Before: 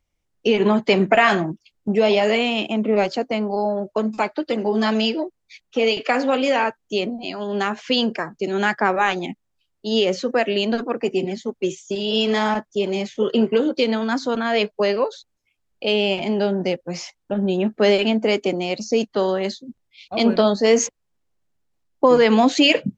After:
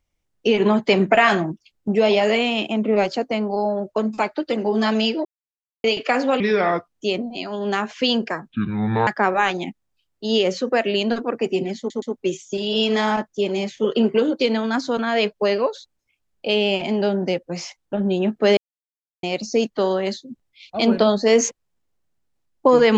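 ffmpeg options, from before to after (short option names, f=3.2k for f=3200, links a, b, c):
-filter_complex "[0:a]asplit=11[a][b][c][d][e][f][g][h][i][j][k];[a]atrim=end=5.25,asetpts=PTS-STARTPTS,afade=t=out:st=5.246:d=0.004:c=hsin[l];[b]atrim=start=5.25:end=5.84,asetpts=PTS-STARTPTS,volume=0[m];[c]atrim=start=5.84:end=6.404,asetpts=PTS-STARTPTS,afade=t=in:d=0.004:c=hsin[n];[d]atrim=start=6.4:end=6.8,asetpts=PTS-STARTPTS,asetrate=33957,aresample=44100,atrim=end_sample=22909,asetpts=PTS-STARTPTS[o];[e]atrim=start=6.796:end=8.374[p];[f]atrim=start=8.37:end=8.69,asetpts=PTS-STARTPTS,asetrate=24255,aresample=44100,atrim=end_sample=25658,asetpts=PTS-STARTPTS[q];[g]atrim=start=8.686:end=11.522[r];[h]atrim=start=11.398:end=11.522[s];[i]atrim=start=11.398:end=17.95,asetpts=PTS-STARTPTS,afade=t=out:st=6.548:d=0.004:c=hsin[t];[j]atrim=start=17.95:end=18.61,asetpts=PTS-STARTPTS,volume=0[u];[k]atrim=start=18.61,asetpts=PTS-STARTPTS,afade=t=in:d=0.004:c=hsin[v];[l][m][n]concat=n=3:v=0:a=1[w];[w][o]acrossfade=d=0.004:c1=hsin:c2=hsin[x];[x][p]acrossfade=d=0.004:c1=hsin:c2=hsin[y];[y][q]acrossfade=d=0.004:c1=hsin:c2=hsin[z];[z][r]acrossfade=d=0.004:c1=hsin:c2=hsin[aa];[aa][s]acrossfade=d=0.004:c1=hsin:c2=hsin[ab];[t][u][v]concat=n=3:v=0:a=1[ac];[ab][ac]acrossfade=d=0.004:c1=hsin:c2=hsin"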